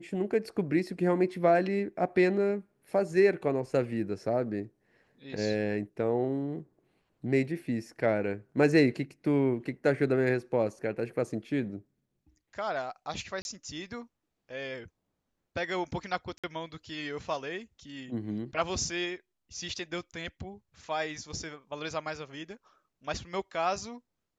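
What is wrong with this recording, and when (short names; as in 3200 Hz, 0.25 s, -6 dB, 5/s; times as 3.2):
13.42–13.45 gap 31 ms
16.38–16.44 gap 56 ms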